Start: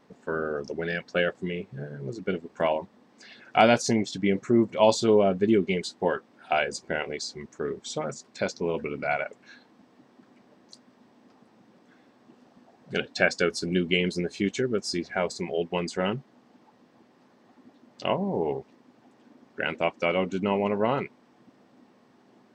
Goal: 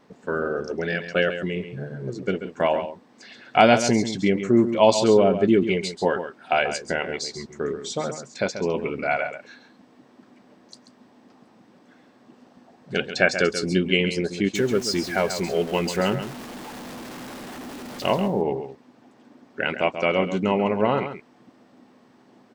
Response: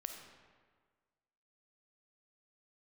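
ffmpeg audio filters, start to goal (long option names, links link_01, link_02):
-filter_complex "[0:a]asettb=1/sr,asplit=3[link_01][link_02][link_03];[link_01]atrim=end=14.554[link_04];[link_02]atrim=start=14.55:end=18.28,asetpts=PTS-STARTPTS,afade=type=in:duration=0.004:curve=qsin,afade=type=out:start_time=3.726:duration=0.004:curve=qsin,aeval=exprs='val(0)+0.5*0.015*sgn(val(0))':channel_layout=same[link_05];[link_03]atrim=start=18.276[link_06];[link_04][link_05]acrossfade=duration=0.004:curve1=hsin:curve2=qsin[link_07];[link_07][link_06]acrossfade=duration=0.004:curve1=qsin:curve2=hsin,aecho=1:1:136:0.316,volume=3.5dB"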